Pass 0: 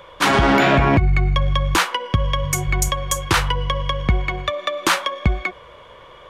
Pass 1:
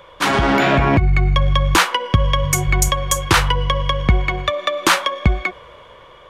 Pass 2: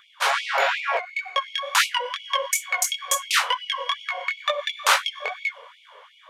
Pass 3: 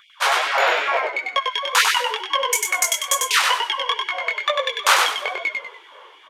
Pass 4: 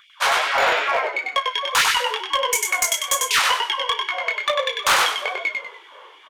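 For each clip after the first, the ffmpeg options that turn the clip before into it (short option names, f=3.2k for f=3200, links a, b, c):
-af "dynaudnorm=f=460:g=5:m=11.5dB,volume=-1dB"
-af "flanger=delay=18:depth=5.9:speed=2.2,afftfilt=real='re*gte(b*sr/1024,390*pow(2200/390,0.5+0.5*sin(2*PI*2.8*pts/sr)))':imag='im*gte(b*sr/1024,390*pow(2200/390,0.5+0.5*sin(2*PI*2.8*pts/sr)))':win_size=1024:overlap=0.75"
-filter_complex "[0:a]asplit=5[a][b][c][d][e];[b]adelay=97,afreqshift=-60,volume=-3.5dB[f];[c]adelay=194,afreqshift=-120,volume=-13.1dB[g];[d]adelay=291,afreqshift=-180,volume=-22.8dB[h];[e]adelay=388,afreqshift=-240,volume=-32.4dB[i];[a][f][g][h][i]amix=inputs=5:normalize=0,volume=2.5dB"
-filter_complex "[0:a]asoftclip=type=hard:threshold=-12dB,asplit=2[a][b];[b]adelay=34,volume=-13dB[c];[a][c]amix=inputs=2:normalize=0"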